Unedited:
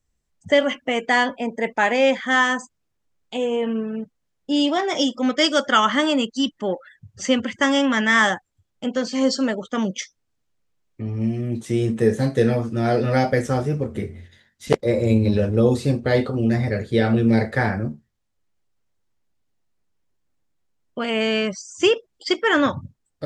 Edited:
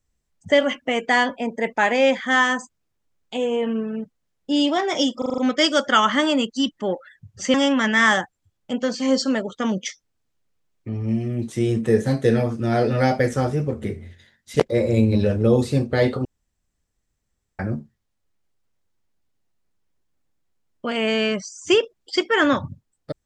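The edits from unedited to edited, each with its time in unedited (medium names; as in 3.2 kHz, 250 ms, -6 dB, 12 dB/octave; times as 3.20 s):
5.18 s: stutter 0.04 s, 6 plays
7.34–7.67 s: delete
16.38–17.72 s: room tone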